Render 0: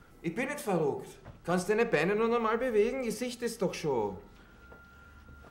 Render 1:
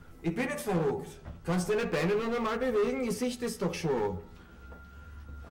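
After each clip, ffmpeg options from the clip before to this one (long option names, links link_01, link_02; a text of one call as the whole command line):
ffmpeg -i in.wav -filter_complex "[0:a]lowshelf=frequency=150:gain=8.5,asoftclip=type=hard:threshold=-27dB,asplit=2[link_01][link_02];[link_02]adelay=12,volume=-5dB[link_03];[link_01][link_03]amix=inputs=2:normalize=0" out.wav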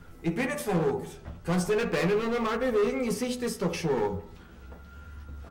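ffmpeg -i in.wav -af "bandreject=frequency=49.89:width_type=h:width=4,bandreject=frequency=99.78:width_type=h:width=4,bandreject=frequency=149.67:width_type=h:width=4,bandreject=frequency=199.56:width_type=h:width=4,bandreject=frequency=249.45:width_type=h:width=4,bandreject=frequency=299.34:width_type=h:width=4,bandreject=frequency=349.23:width_type=h:width=4,bandreject=frequency=399.12:width_type=h:width=4,bandreject=frequency=449.01:width_type=h:width=4,bandreject=frequency=498.9:width_type=h:width=4,bandreject=frequency=548.79:width_type=h:width=4,bandreject=frequency=598.68:width_type=h:width=4,bandreject=frequency=648.57:width_type=h:width=4,bandreject=frequency=698.46:width_type=h:width=4,bandreject=frequency=748.35:width_type=h:width=4,bandreject=frequency=798.24:width_type=h:width=4,bandreject=frequency=848.13:width_type=h:width=4,bandreject=frequency=898.02:width_type=h:width=4,bandreject=frequency=947.91:width_type=h:width=4,bandreject=frequency=997.8:width_type=h:width=4,bandreject=frequency=1047.69:width_type=h:width=4,bandreject=frequency=1097.58:width_type=h:width=4,bandreject=frequency=1147.47:width_type=h:width=4,bandreject=frequency=1197.36:width_type=h:width=4,bandreject=frequency=1247.25:width_type=h:width=4,bandreject=frequency=1297.14:width_type=h:width=4,bandreject=frequency=1347.03:width_type=h:width=4,bandreject=frequency=1396.92:width_type=h:width=4,bandreject=frequency=1446.81:width_type=h:width=4,bandreject=frequency=1496.7:width_type=h:width=4,volume=3dB" out.wav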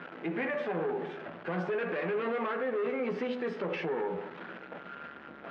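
ffmpeg -i in.wav -af "aeval=exprs='val(0)+0.5*0.0119*sgn(val(0))':channel_layout=same,highpass=frequency=200:width=0.5412,highpass=frequency=200:width=1.3066,equalizer=frequency=230:width_type=q:width=4:gain=-4,equalizer=frequency=600:width_type=q:width=4:gain=4,equalizer=frequency=1600:width_type=q:width=4:gain=5,lowpass=frequency=2900:width=0.5412,lowpass=frequency=2900:width=1.3066,alimiter=level_in=0.5dB:limit=-24dB:level=0:latency=1:release=85,volume=-0.5dB" out.wav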